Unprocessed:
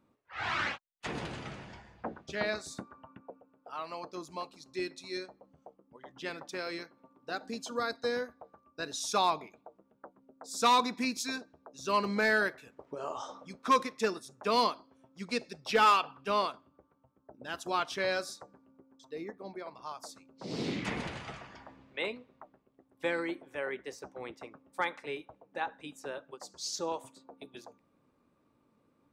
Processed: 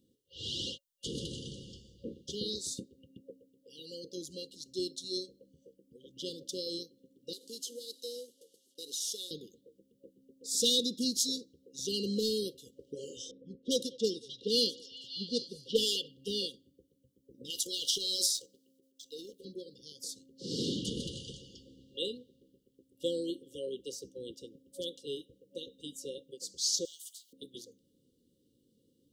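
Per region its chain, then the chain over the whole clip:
0:07.33–0:09.31: variable-slope delta modulation 64 kbit/s + high-pass filter 400 Hz + downward compressor 2 to 1, threshold −45 dBFS
0:13.31–0:16.08: low-pass that shuts in the quiet parts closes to 830 Hz, open at −25 dBFS + echo through a band-pass that steps 195 ms, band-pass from 1,200 Hz, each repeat 0.7 octaves, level −4 dB
0:17.50–0:19.45: high-pass filter 1,300 Hz 6 dB per octave + leveller curve on the samples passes 1 + transient designer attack +1 dB, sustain +9 dB
0:26.85–0:27.33: elliptic high-pass filter 3,000 Hz, stop band 50 dB + every bin compressed towards the loudest bin 2 to 1
whole clip: brick-wall band-stop 550–2,800 Hz; high-shelf EQ 2,700 Hz +9 dB

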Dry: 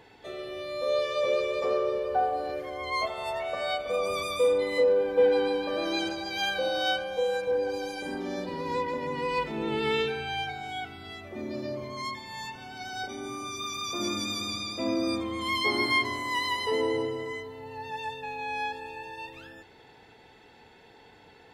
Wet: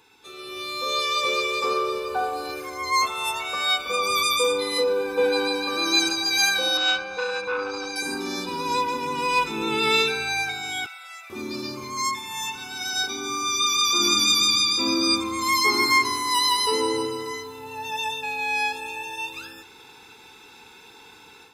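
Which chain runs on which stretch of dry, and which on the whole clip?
0:06.77–0:07.96: high-frequency loss of the air 140 metres + saturating transformer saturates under 930 Hz
0:10.86–0:11.30: Chebyshev high-pass with heavy ripple 510 Hz, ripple 9 dB + comb filter 5.9 ms, depth 85%
whole clip: bass and treble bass −12 dB, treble +12 dB; automatic gain control gain up to 9.5 dB; comb filter 0.8 ms, depth 100%; level −5 dB

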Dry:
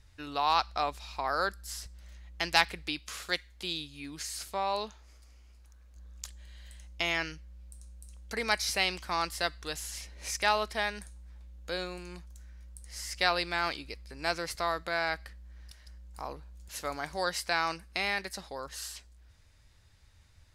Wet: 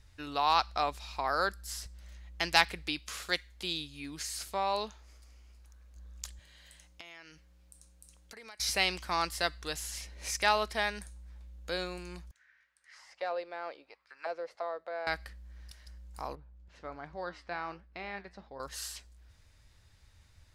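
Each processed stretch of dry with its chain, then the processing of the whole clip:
0:06.39–0:08.60: high-pass filter 250 Hz 6 dB per octave + downward compressor 5 to 1, threshold −48 dBFS
0:12.31–0:15.07: mid-hump overdrive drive 8 dB, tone 3,700 Hz, clips at −10 dBFS + high-shelf EQ 2,200 Hz +9 dB + envelope filter 520–1,900 Hz, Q 3.4, down, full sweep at −26 dBFS
0:16.35–0:18.60: flanger 1.3 Hz, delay 6 ms, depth 5.8 ms, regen +81% + head-to-tape spacing loss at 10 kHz 34 dB
whole clip: no processing

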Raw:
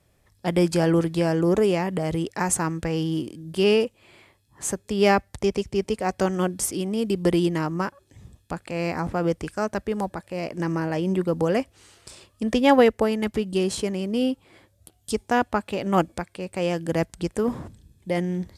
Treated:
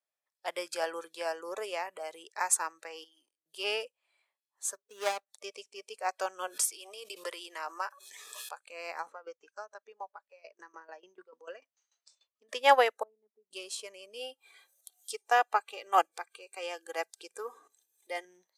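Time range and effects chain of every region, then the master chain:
0:03.04–0:03.46: noise gate −34 dBFS, range −14 dB + low-shelf EQ 460 Hz −9 dB + downward compressor 3 to 1, threshold −40 dBFS
0:04.74–0:05.28: running median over 41 samples + parametric band 7,300 Hz +4.5 dB 1.4 octaves
0:06.47–0:08.58: high-pass filter 450 Hz + background raised ahead of every attack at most 22 dB per second
0:09.12–0:12.49: low-pass filter 7,100 Hz 24 dB per octave + tremolo with a ramp in dB decaying 6.8 Hz, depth 18 dB
0:13.03–0:13.51: four-pole ladder band-pass 190 Hz, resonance 30% + low-shelf EQ 240 Hz −6.5 dB
0:14.19–0:18.25: mains-hum notches 60/120/180 Hz + comb filter 2.5 ms, depth 49% + upward compression, threshold −30 dBFS
whole clip: noise reduction from a noise print of the clip's start 15 dB; high-pass filter 600 Hz 24 dB per octave; expander for the loud parts 1.5 to 1, over −35 dBFS

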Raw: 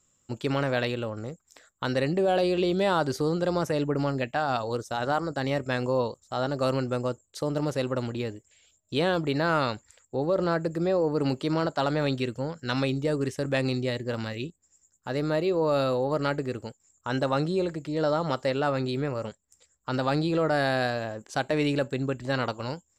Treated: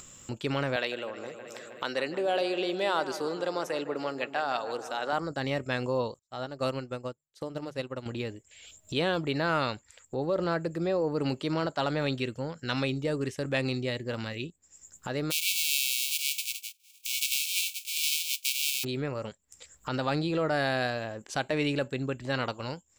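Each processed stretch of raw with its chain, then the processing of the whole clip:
0:00.76–0:05.13: high-pass filter 360 Hz + delay with a low-pass on its return 157 ms, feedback 64%, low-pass 2,200 Hz, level −12.5 dB
0:06.19–0:08.06: mains-hum notches 50/100/150 Hz + expander for the loud parts 2.5 to 1, over −41 dBFS
0:15.30–0:18.83: spectral envelope flattened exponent 0.1 + linear-phase brick-wall high-pass 2,200 Hz
whole clip: parametric band 2,700 Hz +4.5 dB 1.2 octaves; upward compression, threshold −29 dBFS; level −3.5 dB

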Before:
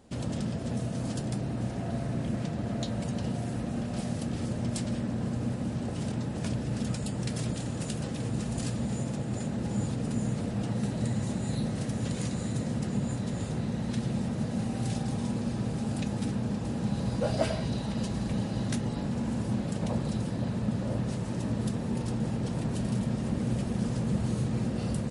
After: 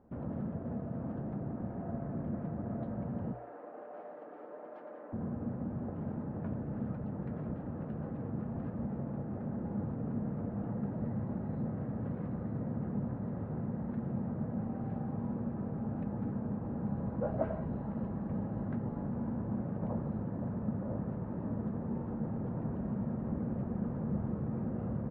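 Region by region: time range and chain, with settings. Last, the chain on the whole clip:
0:03.33–0:05.13: high-pass filter 420 Hz 24 dB per octave + comb filter 6.7 ms, depth 43%
whole clip: low-pass filter 1,400 Hz 24 dB per octave; mains-hum notches 60/120 Hz; level −5 dB

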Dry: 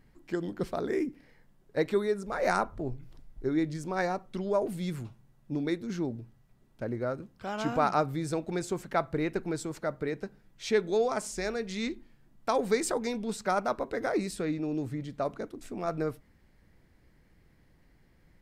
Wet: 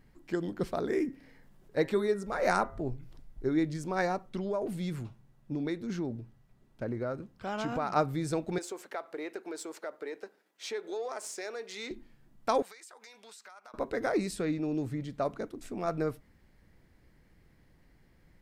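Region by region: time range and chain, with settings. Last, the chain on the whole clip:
0:00.85–0:02.80: hum removal 134.6 Hz, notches 15 + upward compression, threshold −50 dBFS
0:04.29–0:07.96: downward compressor 3 to 1, threshold −29 dBFS + high-shelf EQ 6,800 Hz −4.5 dB
0:08.58–0:11.91: gain on one half-wave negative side −3 dB + high-pass filter 340 Hz 24 dB per octave + downward compressor 2.5 to 1, threshold −36 dBFS
0:12.62–0:13.74: high-pass filter 1,100 Hz + downward compressor 10 to 1, threshold −48 dBFS
whole clip: no processing

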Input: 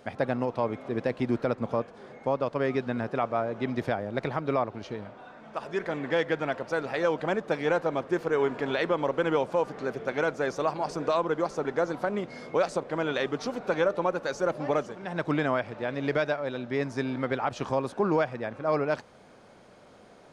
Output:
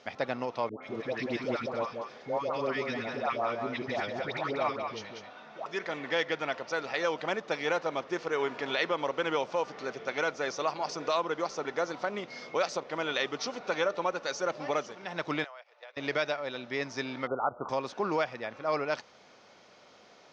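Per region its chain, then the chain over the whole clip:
0:00.69–0:05.66: all-pass dispersion highs, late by 140 ms, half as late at 990 Hz + single-tap delay 190 ms −5.5 dB
0:15.44–0:15.97: noise gate −33 dBFS, range −16 dB + Butterworth high-pass 480 Hz + downward compressor 12 to 1, threshold −41 dBFS
0:17.27–0:17.69: linear-phase brick-wall low-pass 1,500 Hz + parametric band 570 Hz +3.5 dB 1.3 octaves
whole clip: Chebyshev low-pass filter 6,000 Hz, order 4; spectral tilt +3 dB per octave; notch filter 1,600 Hz, Q 14; level −1 dB

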